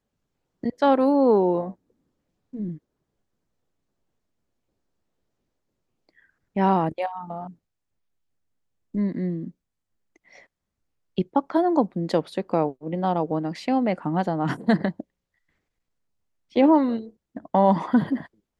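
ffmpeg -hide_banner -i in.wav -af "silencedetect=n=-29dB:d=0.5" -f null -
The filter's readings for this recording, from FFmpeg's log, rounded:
silence_start: 0.00
silence_end: 0.64 | silence_duration: 0.64
silence_start: 1.70
silence_end: 2.55 | silence_duration: 0.84
silence_start: 2.73
silence_end: 6.56 | silence_duration: 3.84
silence_start: 7.47
silence_end: 8.95 | silence_duration: 1.48
silence_start: 9.47
silence_end: 11.18 | silence_duration: 1.71
silence_start: 15.00
silence_end: 16.56 | silence_duration: 1.55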